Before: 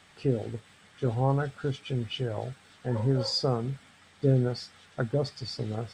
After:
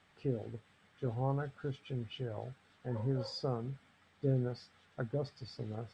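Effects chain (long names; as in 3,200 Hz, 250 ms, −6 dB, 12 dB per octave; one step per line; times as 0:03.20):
high-shelf EQ 4,400 Hz −11 dB
level −8.5 dB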